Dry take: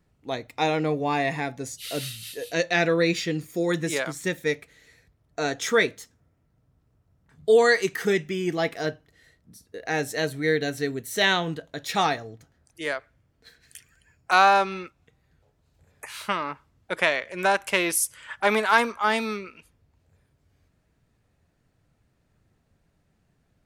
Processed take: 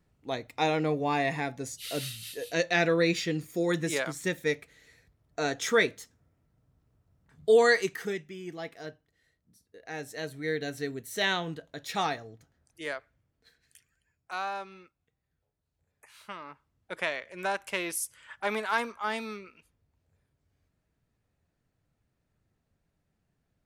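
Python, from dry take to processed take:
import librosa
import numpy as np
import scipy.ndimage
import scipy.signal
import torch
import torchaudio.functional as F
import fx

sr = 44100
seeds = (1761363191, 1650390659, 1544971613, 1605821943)

y = fx.gain(x, sr, db=fx.line((7.77, -3.0), (8.25, -13.5), (9.76, -13.5), (10.75, -6.5), (12.97, -6.5), (14.31, -17.0), (16.12, -17.0), (16.95, -9.0)))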